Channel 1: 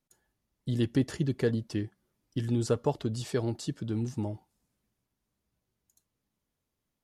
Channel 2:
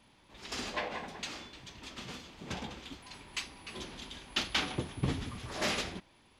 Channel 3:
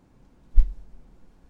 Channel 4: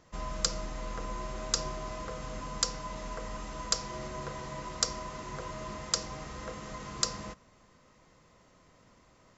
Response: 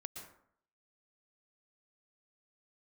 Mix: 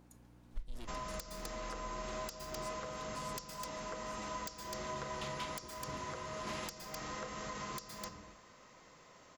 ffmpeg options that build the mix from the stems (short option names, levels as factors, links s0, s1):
-filter_complex "[0:a]highshelf=f=4500:g=9.5,asoftclip=type=tanh:threshold=0.0237,volume=0.447,asplit=2[s0][s1];[1:a]asoftclip=type=tanh:threshold=0.0501,adelay=850,volume=0.224[s2];[2:a]aeval=exprs='val(0)+0.00398*(sin(2*PI*60*n/s)+sin(2*PI*2*60*n/s)/2+sin(2*PI*3*60*n/s)/3+sin(2*PI*4*60*n/s)/4+sin(2*PI*5*60*n/s)/5)':c=same,volume=0.668,asplit=2[s3][s4];[s4]volume=0.282[s5];[3:a]aeval=exprs='(mod(5.62*val(0)+1,2)-1)/5.62':c=same,adelay=750,volume=1.41,asplit=3[s6][s7][s8];[s7]volume=0.376[s9];[s8]volume=0.106[s10];[s1]apad=whole_len=319635[s11];[s2][s11]sidechaincompress=threshold=0.00316:ratio=8:attack=16:release=874[s12];[s0][s3][s6]amix=inputs=3:normalize=0,highpass=f=480:p=1,acompressor=threshold=0.00708:ratio=6,volume=1[s13];[4:a]atrim=start_sample=2205[s14];[s5][s9]amix=inputs=2:normalize=0[s15];[s15][s14]afir=irnorm=-1:irlink=0[s16];[s10]aecho=0:1:255:1[s17];[s12][s13][s16][s17]amix=inputs=4:normalize=0,alimiter=level_in=2:limit=0.0631:level=0:latency=1:release=343,volume=0.501"